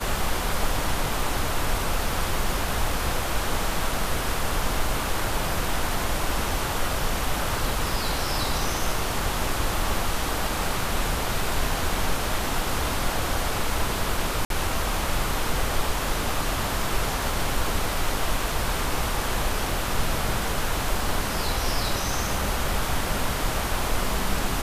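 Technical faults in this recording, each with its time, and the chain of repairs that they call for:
14.45–14.5 gap 52 ms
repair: interpolate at 14.45, 52 ms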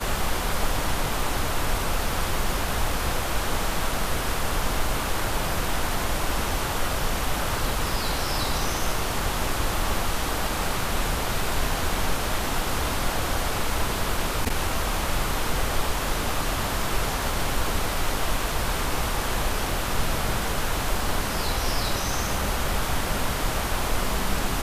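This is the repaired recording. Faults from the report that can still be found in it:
none

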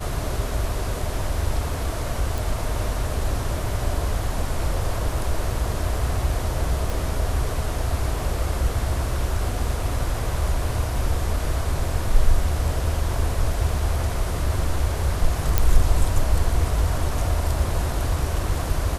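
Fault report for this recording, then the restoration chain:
2.38 pop
6.9 pop
15.58 pop -3 dBFS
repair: de-click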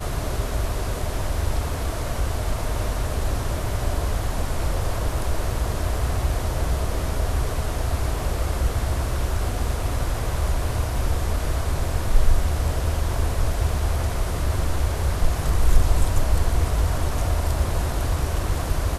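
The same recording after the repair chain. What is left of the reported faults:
6.9 pop

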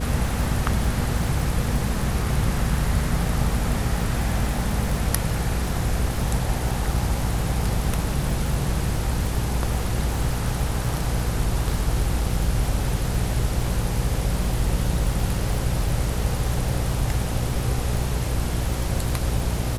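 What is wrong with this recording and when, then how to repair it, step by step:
crackle 47/s -27 dBFS
hum 60 Hz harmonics 8 -27 dBFS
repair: de-click; de-hum 60 Hz, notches 8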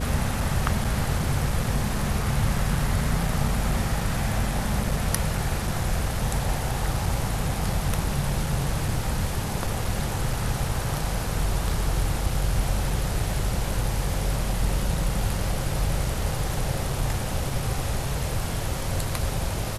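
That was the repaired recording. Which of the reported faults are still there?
none

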